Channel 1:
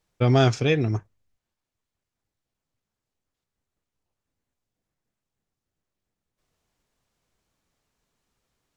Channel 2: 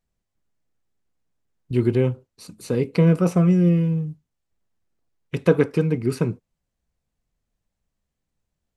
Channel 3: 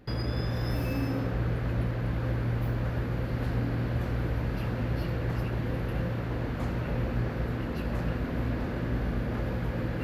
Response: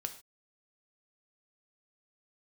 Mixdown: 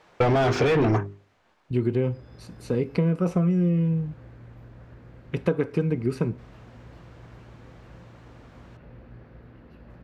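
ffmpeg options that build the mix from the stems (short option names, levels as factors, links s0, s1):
-filter_complex "[0:a]bandreject=f=50:t=h:w=6,bandreject=f=100:t=h:w=6,bandreject=f=150:t=h:w=6,bandreject=f=200:t=h:w=6,bandreject=f=250:t=h:w=6,bandreject=f=300:t=h:w=6,bandreject=f=350:t=h:w=6,bandreject=f=400:t=h:w=6,asplit=2[s0][s1];[s1]highpass=f=720:p=1,volume=50.1,asoftclip=type=tanh:threshold=0.447[s2];[s0][s2]amix=inputs=2:normalize=0,lowpass=f=1300:p=1,volume=0.501,volume=1.26[s3];[1:a]volume=0.631,asplit=3[s4][s5][s6];[s5]volume=0.355[s7];[2:a]adelay=1950,volume=0.141[s8];[s6]apad=whole_len=528758[s9];[s8][s9]sidechaincompress=threshold=0.0708:ratio=8:attack=16:release=473[s10];[3:a]atrim=start_sample=2205[s11];[s7][s11]afir=irnorm=-1:irlink=0[s12];[s3][s4][s10][s12]amix=inputs=4:normalize=0,lowpass=f=3200:p=1,acompressor=threshold=0.126:ratio=10"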